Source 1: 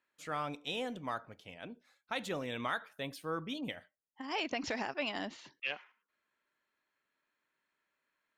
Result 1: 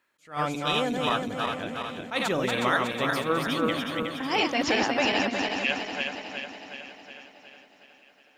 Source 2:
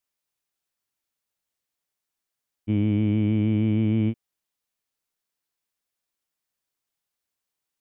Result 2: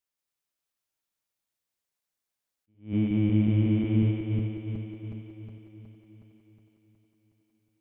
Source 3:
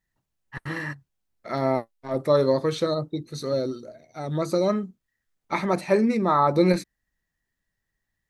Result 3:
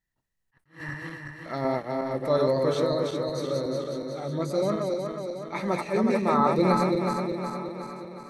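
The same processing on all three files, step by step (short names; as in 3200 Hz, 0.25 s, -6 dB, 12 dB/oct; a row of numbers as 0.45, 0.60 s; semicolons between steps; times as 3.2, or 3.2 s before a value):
regenerating reverse delay 0.183 s, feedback 74%, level -3 dB; thinning echo 1.189 s, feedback 25%, high-pass 210 Hz, level -19.5 dB; attack slew limiter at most 210 dB/s; match loudness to -27 LUFS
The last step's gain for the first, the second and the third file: +10.0, -5.0, -4.5 dB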